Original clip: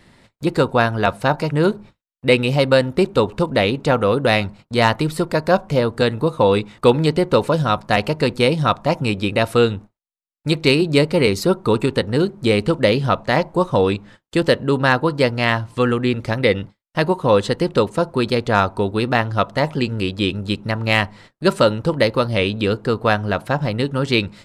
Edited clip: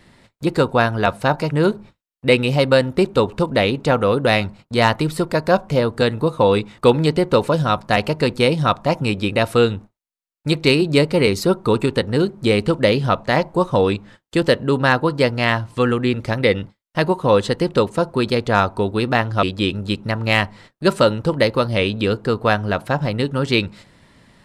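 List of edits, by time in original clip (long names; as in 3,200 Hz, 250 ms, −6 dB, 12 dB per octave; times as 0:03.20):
0:19.43–0:20.03: remove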